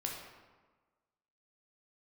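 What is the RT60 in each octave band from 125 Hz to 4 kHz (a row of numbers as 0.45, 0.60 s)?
1.3, 1.4, 1.3, 1.4, 1.1, 0.85 s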